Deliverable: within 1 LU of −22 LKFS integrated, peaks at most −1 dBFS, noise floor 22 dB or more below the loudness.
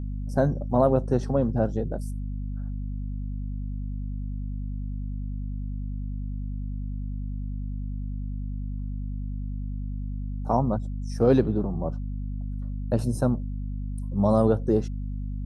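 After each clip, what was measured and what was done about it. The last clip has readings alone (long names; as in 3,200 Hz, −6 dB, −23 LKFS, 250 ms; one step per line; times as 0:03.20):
mains hum 50 Hz; hum harmonics up to 250 Hz; level of the hum −29 dBFS; integrated loudness −28.5 LKFS; sample peak −7.5 dBFS; target loudness −22.0 LKFS
→ hum removal 50 Hz, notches 5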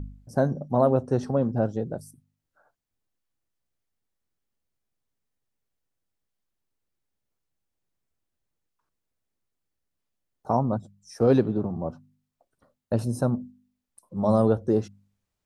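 mains hum none found; integrated loudness −25.5 LKFS; sample peak −8.0 dBFS; target loudness −22.0 LKFS
→ level +3.5 dB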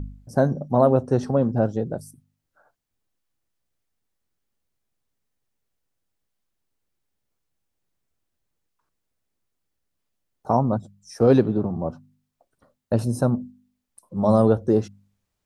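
integrated loudness −22.0 LKFS; sample peak −4.5 dBFS; background noise floor −79 dBFS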